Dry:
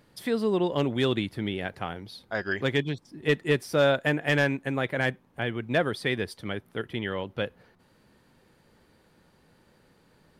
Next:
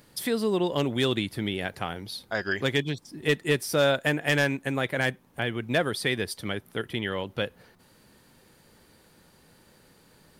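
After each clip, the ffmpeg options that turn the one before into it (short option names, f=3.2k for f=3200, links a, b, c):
-filter_complex "[0:a]highshelf=f=4.8k:g=11.5,asplit=2[a][b];[b]acompressor=threshold=-31dB:ratio=6,volume=-2.5dB[c];[a][c]amix=inputs=2:normalize=0,volume=-2.5dB"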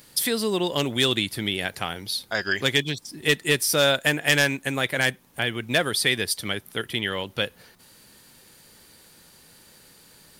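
-af "highshelf=f=2.2k:g=11.5"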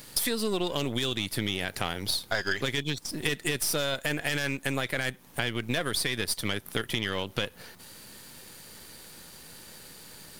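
-af "aeval=exprs='if(lt(val(0),0),0.447*val(0),val(0))':c=same,alimiter=limit=-14dB:level=0:latency=1:release=17,acompressor=threshold=-32dB:ratio=6,volume=7dB"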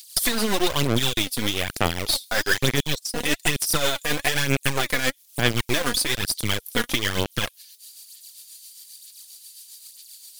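-filter_complex "[0:a]acrossover=split=3500[a][b];[a]acrusher=bits=4:mix=0:aa=0.000001[c];[c][b]amix=inputs=2:normalize=0,aphaser=in_gain=1:out_gain=1:delay=4.2:decay=0.55:speed=1.1:type=sinusoidal,tremolo=f=7.5:d=0.48,volume=6.5dB"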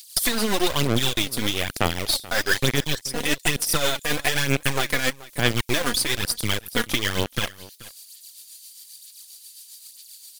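-af "aecho=1:1:431:0.106"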